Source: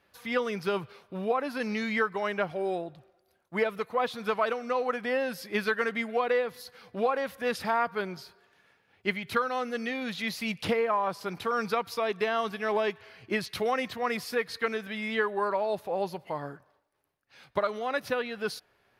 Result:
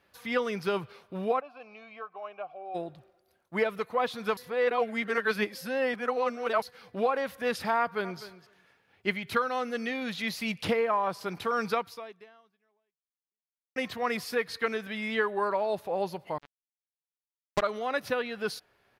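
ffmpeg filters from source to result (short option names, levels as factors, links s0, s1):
-filter_complex "[0:a]asplit=3[s0][s1][s2];[s0]afade=t=out:st=1.39:d=0.02[s3];[s1]asplit=3[s4][s5][s6];[s4]bandpass=f=730:t=q:w=8,volume=1[s7];[s5]bandpass=f=1090:t=q:w=8,volume=0.501[s8];[s6]bandpass=f=2440:t=q:w=8,volume=0.355[s9];[s7][s8][s9]amix=inputs=3:normalize=0,afade=t=in:st=1.39:d=0.02,afade=t=out:st=2.74:d=0.02[s10];[s2]afade=t=in:st=2.74:d=0.02[s11];[s3][s10][s11]amix=inputs=3:normalize=0,asplit=2[s12][s13];[s13]afade=t=in:st=7.79:d=0.01,afade=t=out:st=8.21:d=0.01,aecho=0:1:250|500:0.177828|0.0177828[s14];[s12][s14]amix=inputs=2:normalize=0,asettb=1/sr,asplit=3[s15][s16][s17];[s15]atrim=end=16.384[s18];[s16]atrim=start=16.38:end=17.62,asetpts=PTS-STARTPTS,afade=t=in:d=0.004:c=qsin,afade=t=out:st=1.236:d=0.004:c=qsin,acrusher=bits=3:mix=0:aa=0.5[s19];[s17]atrim=start=17.616[s20];[s18][s19]acrossfade=d=0.004:c1=hsin:c2=qsin[s21];[s21][s20]acrossfade=d=0.004:c1=qsin:c2=hsin,asplit=4[s22][s23][s24][s25];[s22]atrim=end=4.372[s26];[s23]atrim=start=4.368:end=6.622,asetpts=PTS-STARTPTS,areverse[s27];[s24]atrim=start=6.618:end=13.76,asetpts=PTS-STARTPTS,afade=t=out:st=5.152:d=1.99:c=exp[s28];[s25]atrim=start=13.76,asetpts=PTS-STARTPTS,afade=t=in:d=0.004:c=hsin[s29];[s26][s27]acrossfade=d=0.004:c1=hsin:c2=hsin[s30];[s28][s29]concat=n=2:v=0:a=1[s31];[s30][s31]acrossfade=d=0.004:c1=hsin:c2=hsin"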